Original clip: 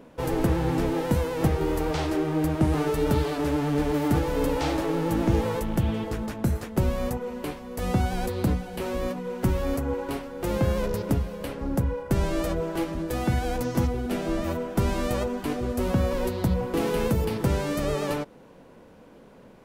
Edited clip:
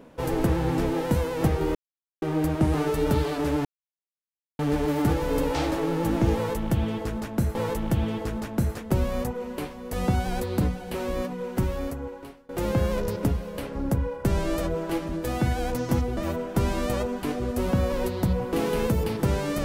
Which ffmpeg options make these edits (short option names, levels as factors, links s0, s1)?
-filter_complex "[0:a]asplit=7[s0][s1][s2][s3][s4][s5][s6];[s0]atrim=end=1.75,asetpts=PTS-STARTPTS,afade=t=out:st=1.746:d=0.004:c=hsin[s7];[s1]atrim=start=1.75:end=2.22,asetpts=PTS-STARTPTS,volume=0[s8];[s2]atrim=start=2.22:end=3.65,asetpts=PTS-STARTPTS,afade=t=in:d=0.004:c=hsin,afade=t=out:st=1.426:d=0.004:c=hsin,apad=pad_dur=0.94[s9];[s3]atrim=start=3.65:end=6.612,asetpts=PTS-STARTPTS,afade=t=in:d=0.004:c=hsin[s10];[s4]atrim=start=5.408:end=10.35,asetpts=PTS-STARTPTS,afade=t=out:st=3.892:d=1.05:silence=0.0668344[s11];[s5]atrim=start=10.35:end=14.032,asetpts=PTS-STARTPTS,afade=t=in:d=0.004:c=hsin:silence=0.0668344[s12];[s6]atrim=start=14.378[s13];[s7][s8][s9][s10]concat=n=4:v=0:a=1[s14];[s11][s12]concat=n=2:v=0:a=1[s15];[s14][s15]acrossfade=d=0.004:c1=hsin:c2=hsin[s16];[s16][s13]acrossfade=d=0.004:c1=hsin:c2=hsin"